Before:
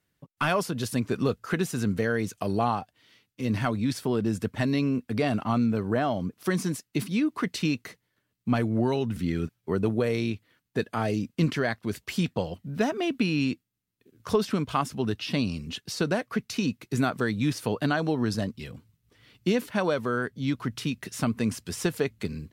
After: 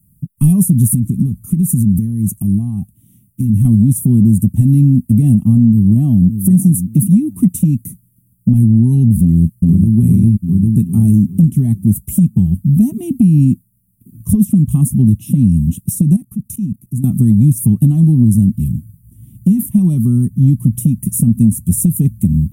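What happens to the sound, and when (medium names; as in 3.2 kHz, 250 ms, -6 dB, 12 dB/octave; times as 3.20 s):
0.94–3.65 s: compression, threshold -31 dBFS
5.70–6.41 s: echo throw 580 ms, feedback 20%, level -12.5 dB
9.22–9.96 s: echo throw 400 ms, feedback 45%, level -0.5 dB
16.16–17.04 s: level held to a coarse grid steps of 20 dB
whole clip: elliptic band-stop 200–9900 Hz, stop band 40 dB; compression, threshold -32 dBFS; loudness maximiser +27.5 dB; trim -1 dB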